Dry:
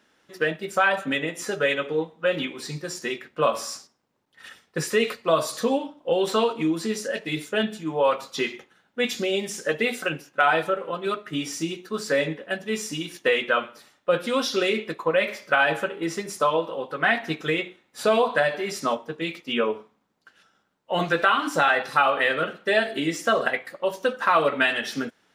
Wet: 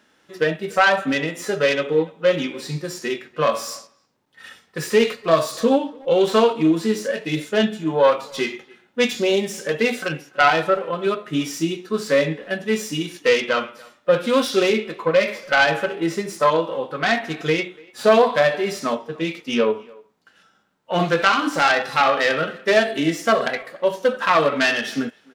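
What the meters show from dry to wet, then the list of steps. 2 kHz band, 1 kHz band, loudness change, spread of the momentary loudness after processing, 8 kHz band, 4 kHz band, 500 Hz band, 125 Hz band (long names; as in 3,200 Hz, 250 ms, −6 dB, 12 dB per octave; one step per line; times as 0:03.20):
+2.5 dB, +3.5 dB, +4.5 dB, 10 LU, +2.0 dB, +3.5 dB, +5.5 dB, +6.0 dB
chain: phase distortion by the signal itself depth 0.15 ms
harmonic and percussive parts rebalanced percussive −9 dB
far-end echo of a speakerphone 290 ms, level −24 dB
level +7 dB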